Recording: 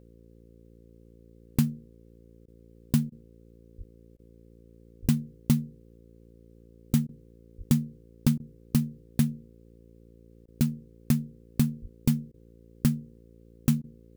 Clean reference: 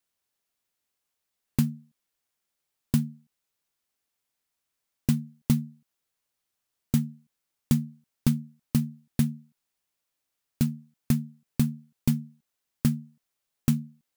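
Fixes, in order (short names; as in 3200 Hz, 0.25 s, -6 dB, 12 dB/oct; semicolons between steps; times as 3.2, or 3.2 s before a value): de-hum 57.1 Hz, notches 9; de-plosive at 3.77/5.01/7.57/11.81; interpolate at 2.46/3.1/4.17/7.07/8.38/10.46/12.32/13.82, 18 ms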